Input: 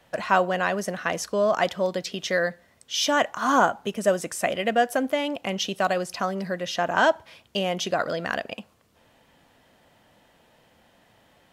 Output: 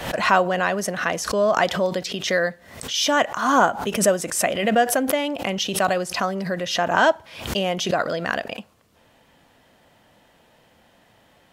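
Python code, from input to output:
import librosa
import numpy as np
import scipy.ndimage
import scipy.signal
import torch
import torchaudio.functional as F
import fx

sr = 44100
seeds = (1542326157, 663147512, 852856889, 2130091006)

y = fx.pre_swell(x, sr, db_per_s=83.0)
y = y * librosa.db_to_amplitude(2.5)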